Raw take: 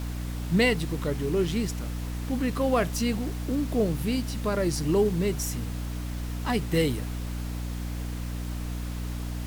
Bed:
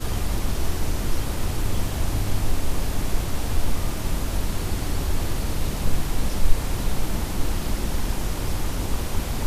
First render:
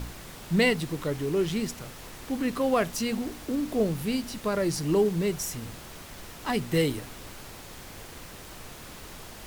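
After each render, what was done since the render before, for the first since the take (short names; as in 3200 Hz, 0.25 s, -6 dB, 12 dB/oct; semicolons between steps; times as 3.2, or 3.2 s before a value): de-hum 60 Hz, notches 5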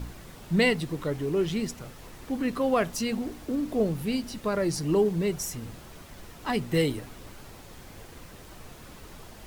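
denoiser 6 dB, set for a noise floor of -44 dBFS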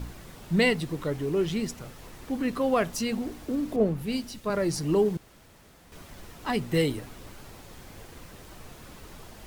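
3.76–4.5 three-band expander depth 70%; 5.17–5.92 room tone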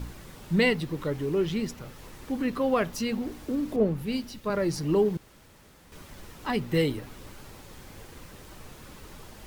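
notch 690 Hz, Q 12; dynamic EQ 8500 Hz, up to -6 dB, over -54 dBFS, Q 1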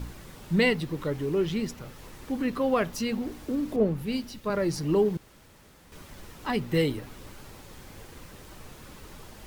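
nothing audible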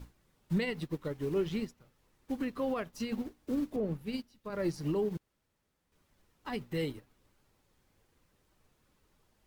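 limiter -22.5 dBFS, peak gain reduction 10 dB; upward expander 2.5:1, over -43 dBFS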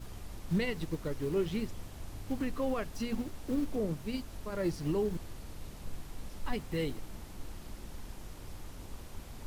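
add bed -20 dB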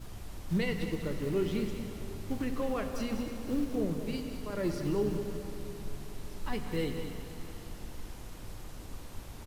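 echo 0.197 s -10 dB; plate-style reverb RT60 3.8 s, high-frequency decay 1×, DRR 6 dB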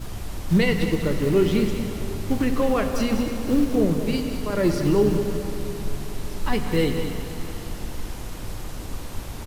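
gain +11.5 dB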